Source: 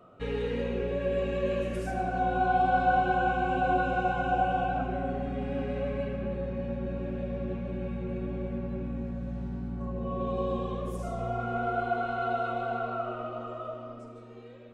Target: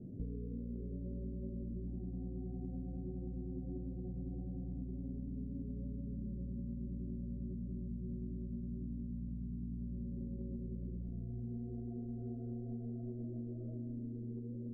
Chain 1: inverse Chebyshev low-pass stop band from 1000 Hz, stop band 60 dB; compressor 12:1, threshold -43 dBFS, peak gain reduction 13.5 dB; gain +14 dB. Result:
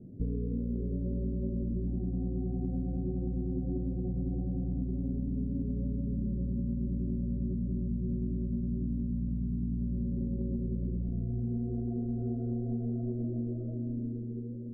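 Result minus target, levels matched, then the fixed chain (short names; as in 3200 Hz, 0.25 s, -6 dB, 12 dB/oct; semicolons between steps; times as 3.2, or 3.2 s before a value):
compressor: peak gain reduction -9.5 dB
inverse Chebyshev low-pass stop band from 1000 Hz, stop band 60 dB; compressor 12:1, threshold -53.5 dBFS, peak gain reduction 23 dB; gain +14 dB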